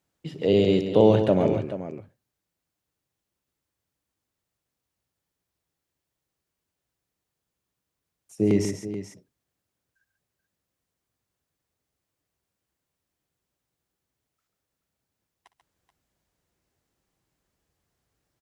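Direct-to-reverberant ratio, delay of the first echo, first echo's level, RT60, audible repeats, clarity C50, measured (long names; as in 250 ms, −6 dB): no reverb audible, 59 ms, −17.0 dB, no reverb audible, 3, no reverb audible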